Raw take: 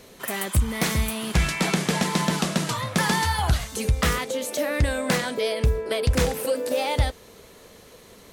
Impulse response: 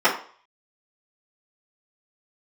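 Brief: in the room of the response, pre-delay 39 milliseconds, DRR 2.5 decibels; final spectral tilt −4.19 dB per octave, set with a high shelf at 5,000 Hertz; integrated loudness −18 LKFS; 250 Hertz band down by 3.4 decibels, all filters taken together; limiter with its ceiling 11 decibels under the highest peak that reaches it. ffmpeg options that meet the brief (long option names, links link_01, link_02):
-filter_complex "[0:a]equalizer=frequency=250:width_type=o:gain=-5,highshelf=frequency=5000:gain=-5,alimiter=limit=-22.5dB:level=0:latency=1,asplit=2[link_01][link_02];[1:a]atrim=start_sample=2205,adelay=39[link_03];[link_02][link_03]afir=irnorm=-1:irlink=0,volume=-23dB[link_04];[link_01][link_04]amix=inputs=2:normalize=0,volume=12dB"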